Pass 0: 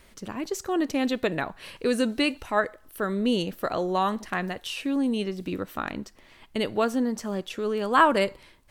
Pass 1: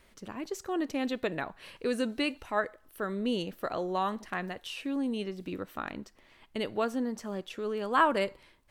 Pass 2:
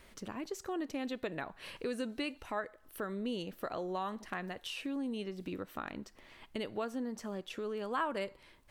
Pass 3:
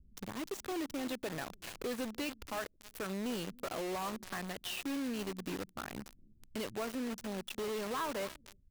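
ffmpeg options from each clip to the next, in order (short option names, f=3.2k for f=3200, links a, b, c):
-af "bass=f=250:g=-2,treble=f=4k:g=-3,volume=-5.5dB"
-af "acompressor=threshold=-45dB:ratio=2,volume=3dB"
-filter_complex "[0:a]asplit=2[a][b];[b]adelay=290,highpass=300,lowpass=3.4k,asoftclip=type=hard:threshold=-32.5dB,volume=-13dB[c];[a][c]amix=inputs=2:normalize=0,acrossover=split=220[d][e];[e]acrusher=bits=6:mix=0:aa=0.000001[f];[d][f]amix=inputs=2:normalize=0,asoftclip=type=tanh:threshold=-34.5dB,volume=2.5dB"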